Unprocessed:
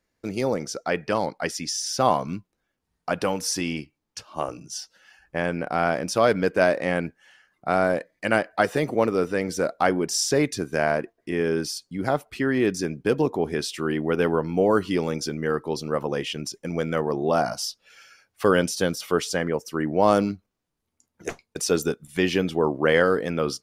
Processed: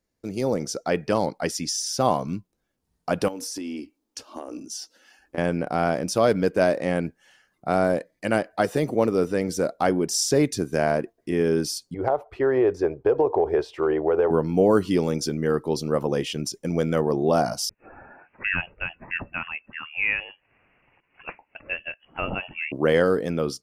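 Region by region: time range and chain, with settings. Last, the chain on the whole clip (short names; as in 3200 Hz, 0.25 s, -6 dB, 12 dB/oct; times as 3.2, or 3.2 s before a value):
3.28–5.38 resonant low shelf 200 Hz -9 dB, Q 3 + compressor 10:1, threshold -32 dBFS
11.94–14.31 EQ curve 100 Hz 0 dB, 210 Hz -19 dB, 400 Hz +6 dB, 860 Hz +10 dB, 8900 Hz -25 dB + compressor 5:1, threshold -18 dBFS
17.69–22.72 HPF 650 Hz + upward compressor, threshold -35 dBFS + inverted band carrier 3100 Hz
whole clip: AGC gain up to 6 dB; bell 1800 Hz -7 dB 2.4 oct; gain -1.5 dB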